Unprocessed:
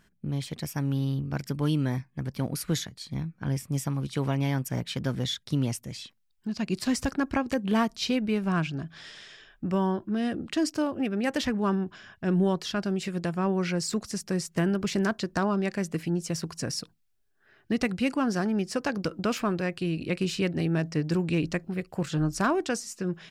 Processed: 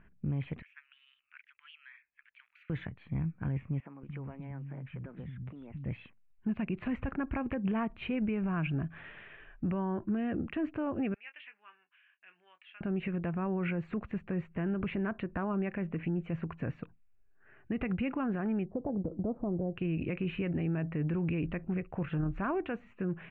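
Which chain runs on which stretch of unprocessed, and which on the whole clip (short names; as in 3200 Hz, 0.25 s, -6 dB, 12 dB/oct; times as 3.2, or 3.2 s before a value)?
0.62–2.7 Bessel high-pass 2900 Hz, order 8 + decimation joined by straight lines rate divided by 2×
3.8–5.85 compressor 12:1, threshold -37 dBFS + air absorption 280 m + three bands offset in time mids, lows, highs 0.23/0.3 s, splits 220/3900 Hz
11.14–12.81 ladder band-pass 3200 Hz, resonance 40% + doubler 23 ms -10 dB
18.65–19.76 steep low-pass 810 Hz + compressor 2.5:1, threshold -30 dBFS
whole clip: elliptic low-pass 2600 Hz, stop band 50 dB; low shelf 96 Hz +10.5 dB; limiter -25 dBFS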